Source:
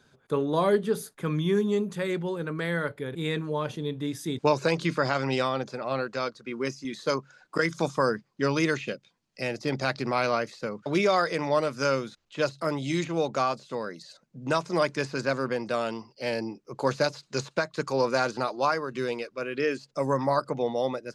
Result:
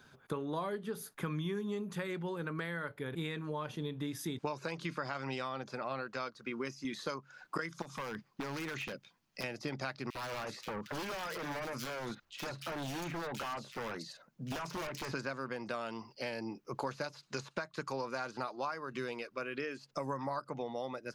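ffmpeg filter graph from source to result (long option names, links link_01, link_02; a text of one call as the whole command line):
ffmpeg -i in.wav -filter_complex "[0:a]asettb=1/sr,asplit=3[link_01][link_02][link_03];[link_01]atrim=end=7.824[link_04];[link_02]atrim=start=7.82:end=9.44,asetpts=PTS-STARTPTS,afade=type=in:duration=0.004:curve=qsin,afade=type=out:start_time=1.616:duration=0.004:curve=qsin,acompressor=threshold=-31dB:ratio=10:attack=3.2:release=140:knee=1:detection=peak,aeval=exprs='0.0266*(abs(mod(val(0)/0.0266+3,4)-2)-1)':channel_layout=same[link_05];[link_03]atrim=start=9.436[link_06];[link_04][link_05]acrossfade=duration=0.004:curve1=hsin:curve2=qsin[link_07];[link_07][link_06]acrossfade=duration=0.004:curve1=qsin:curve2=hsin,asettb=1/sr,asplit=3[link_08][link_09][link_10];[link_08]atrim=end=10.104[link_11];[link_09]atrim=start=10.1:end=15.12,asetpts=PTS-STARTPTS,afade=type=in:duration=0.004:curve=qsin,afade=type=out:start_time=5.016:duration=0.004:curve=qsin,acompressor=threshold=-28dB:ratio=6:attack=3.2:release=140:knee=1:detection=peak,aeval=exprs='0.0266*(abs(mod(val(0)/0.0266+3,4)-2)-1)':channel_layout=same,acrossover=split=2600[link_12][link_13];[link_12]adelay=50[link_14];[link_14][link_13]amix=inputs=2:normalize=0,atrim=end_sample=221382[link_15];[link_10]atrim=start=15.116[link_16];[link_11][link_15]acrossfade=duration=0.004:curve1=hsin:curve2=qsin[link_17];[link_17][link_16]acrossfade=duration=0.004:curve1=qsin:curve2=hsin,tiltshelf=frequency=790:gain=-4,acompressor=threshold=-37dB:ratio=6,equalizer=frequency=500:width_type=o:width=1:gain=-4,equalizer=frequency=2000:width_type=o:width=1:gain=-3,equalizer=frequency=4000:width_type=o:width=1:gain=-5,equalizer=frequency=8000:width_type=o:width=1:gain=-9,volume=4dB" out.wav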